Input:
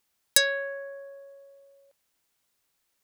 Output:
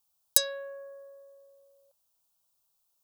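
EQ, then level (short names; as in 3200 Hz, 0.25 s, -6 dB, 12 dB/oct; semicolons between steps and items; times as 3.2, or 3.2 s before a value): high shelf 12000 Hz +7 dB; fixed phaser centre 810 Hz, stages 4; -3.0 dB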